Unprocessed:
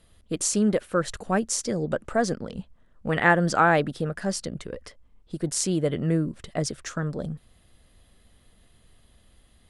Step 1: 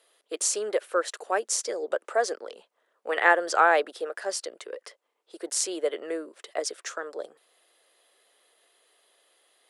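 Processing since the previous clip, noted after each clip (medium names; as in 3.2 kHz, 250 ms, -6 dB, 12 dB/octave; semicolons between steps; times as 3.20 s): steep high-pass 390 Hz 36 dB/octave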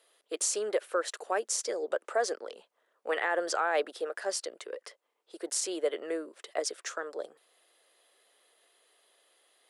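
peak limiter -16 dBFS, peak gain reduction 11.5 dB; trim -2 dB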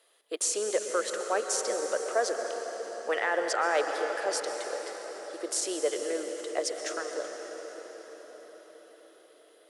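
reverberation RT60 6.1 s, pre-delay 114 ms, DRR 4 dB; trim +1 dB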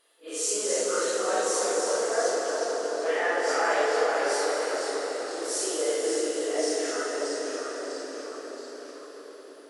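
phase randomisation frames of 200 ms; FDN reverb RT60 3.6 s, high-frequency decay 0.7×, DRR 0.5 dB; ever faster or slower copies 233 ms, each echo -1 st, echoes 3, each echo -6 dB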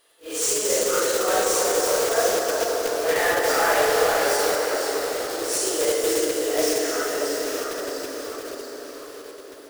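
block-companded coder 3-bit; trim +4.5 dB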